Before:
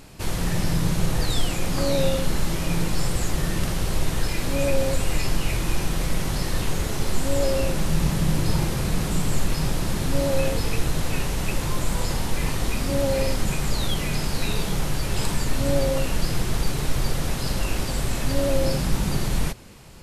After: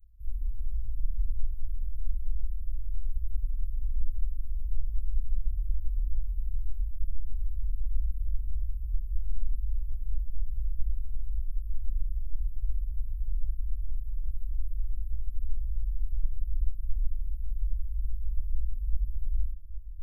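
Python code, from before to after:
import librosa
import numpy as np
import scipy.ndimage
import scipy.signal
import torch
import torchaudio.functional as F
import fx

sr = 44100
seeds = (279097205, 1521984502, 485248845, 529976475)

p1 = scipy.signal.sosfilt(scipy.signal.cheby2(4, 70, [240.0, 7600.0], 'bandstop', fs=sr, output='sos'), x)
p2 = p1 + fx.echo_diffused(p1, sr, ms=898, feedback_pct=61, wet_db=-13.5, dry=0)
y = p2 * librosa.db_to_amplitude(-2.0)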